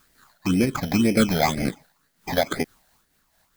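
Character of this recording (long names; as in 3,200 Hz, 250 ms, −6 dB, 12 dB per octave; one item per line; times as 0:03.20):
aliases and images of a low sample rate 2,800 Hz, jitter 0%
phaser sweep stages 8, 2 Hz, lowest notch 330–1,100 Hz
a quantiser's noise floor 12 bits, dither triangular
amplitude modulation by smooth noise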